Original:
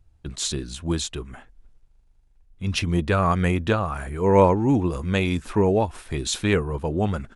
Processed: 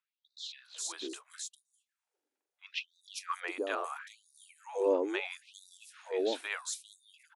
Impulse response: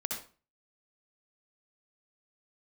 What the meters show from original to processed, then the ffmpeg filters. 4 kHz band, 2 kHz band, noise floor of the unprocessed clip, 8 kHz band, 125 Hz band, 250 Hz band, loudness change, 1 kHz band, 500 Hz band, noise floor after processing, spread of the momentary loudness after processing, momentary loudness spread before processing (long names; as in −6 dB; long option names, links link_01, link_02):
−10.5 dB, −9.5 dB, −58 dBFS, −9.0 dB, below −40 dB, −19.5 dB, −13.5 dB, −15.5 dB, −12.0 dB, below −85 dBFS, 19 LU, 12 LU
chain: -filter_complex "[0:a]acrossover=split=690|4400[link_01][link_02][link_03];[link_03]adelay=400[link_04];[link_01]adelay=500[link_05];[link_05][link_02][link_04]amix=inputs=3:normalize=0,afftfilt=real='re*gte(b*sr/1024,230*pow(3600/230,0.5+0.5*sin(2*PI*0.75*pts/sr)))':imag='im*gte(b*sr/1024,230*pow(3600/230,0.5+0.5*sin(2*PI*0.75*pts/sr)))':win_size=1024:overlap=0.75,volume=-8dB"